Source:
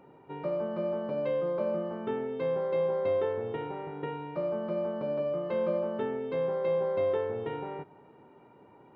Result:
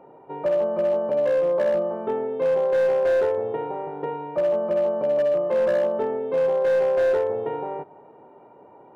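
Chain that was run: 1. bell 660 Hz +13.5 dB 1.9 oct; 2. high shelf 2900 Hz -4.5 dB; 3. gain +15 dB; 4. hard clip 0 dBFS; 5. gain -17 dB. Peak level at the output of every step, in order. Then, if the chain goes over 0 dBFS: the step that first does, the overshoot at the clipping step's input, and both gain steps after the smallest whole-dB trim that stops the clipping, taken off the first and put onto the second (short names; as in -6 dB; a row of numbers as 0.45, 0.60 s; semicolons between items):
-8.0, -8.0, +7.0, 0.0, -17.0 dBFS; step 3, 7.0 dB; step 3 +8 dB, step 5 -10 dB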